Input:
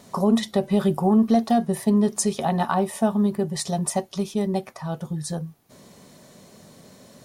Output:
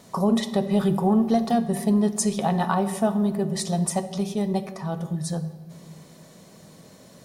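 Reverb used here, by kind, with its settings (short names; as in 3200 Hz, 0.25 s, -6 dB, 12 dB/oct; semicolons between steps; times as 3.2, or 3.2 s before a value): shoebox room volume 2000 m³, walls mixed, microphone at 0.62 m; gain -1 dB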